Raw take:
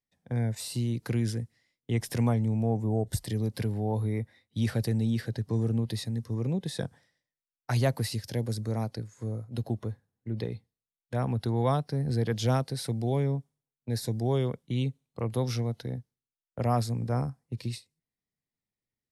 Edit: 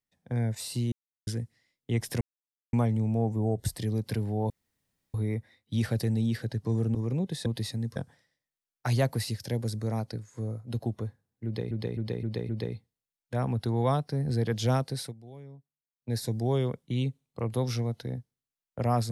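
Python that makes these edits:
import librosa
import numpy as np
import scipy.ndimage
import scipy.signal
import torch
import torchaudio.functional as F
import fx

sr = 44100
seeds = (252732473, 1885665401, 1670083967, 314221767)

y = fx.edit(x, sr, fx.silence(start_s=0.92, length_s=0.35),
    fx.insert_silence(at_s=2.21, length_s=0.52),
    fx.insert_room_tone(at_s=3.98, length_s=0.64),
    fx.move(start_s=5.79, length_s=0.5, to_s=6.8),
    fx.repeat(start_s=10.29, length_s=0.26, count=5),
    fx.fade_down_up(start_s=12.81, length_s=1.09, db=-19.0, fade_s=0.13), tone=tone)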